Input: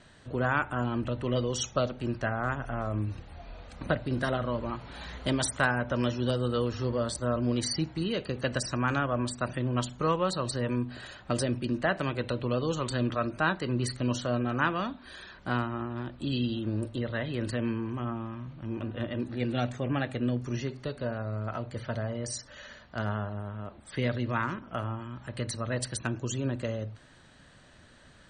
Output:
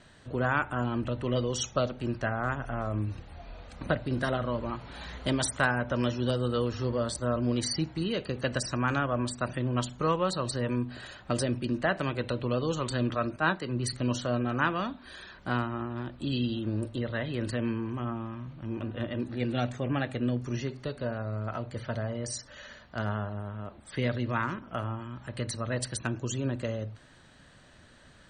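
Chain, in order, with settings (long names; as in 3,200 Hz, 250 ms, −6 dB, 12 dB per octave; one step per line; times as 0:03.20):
0:13.36–0:13.93: multiband upward and downward expander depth 70%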